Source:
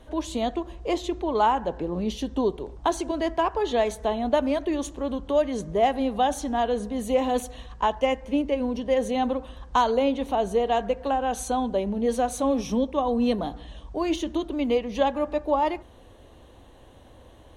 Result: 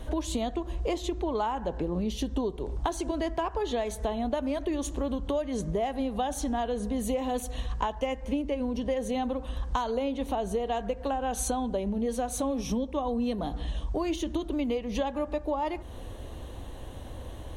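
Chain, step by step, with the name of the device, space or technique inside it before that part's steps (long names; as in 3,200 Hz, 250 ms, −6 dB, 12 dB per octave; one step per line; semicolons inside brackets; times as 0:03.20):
ASMR close-microphone chain (low-shelf EQ 140 Hz +8 dB; downward compressor 6 to 1, threshold −33 dBFS, peak gain reduction 16.5 dB; high-shelf EQ 8,200 Hz +7 dB)
level +5.5 dB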